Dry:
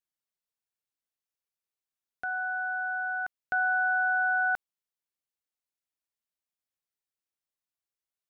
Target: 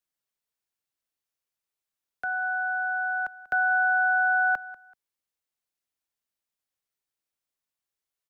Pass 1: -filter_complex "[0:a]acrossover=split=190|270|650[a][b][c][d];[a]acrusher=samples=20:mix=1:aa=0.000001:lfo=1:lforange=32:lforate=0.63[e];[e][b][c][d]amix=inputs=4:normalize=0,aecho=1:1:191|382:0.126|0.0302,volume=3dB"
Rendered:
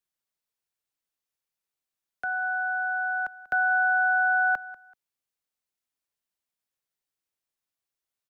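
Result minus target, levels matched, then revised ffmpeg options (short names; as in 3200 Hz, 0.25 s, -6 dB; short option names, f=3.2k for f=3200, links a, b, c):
decimation with a swept rate: distortion -4 dB
-filter_complex "[0:a]acrossover=split=190|270|650[a][b][c][d];[a]acrusher=samples=40:mix=1:aa=0.000001:lfo=1:lforange=64:lforate=0.63[e];[e][b][c][d]amix=inputs=4:normalize=0,aecho=1:1:191|382:0.126|0.0302,volume=3dB"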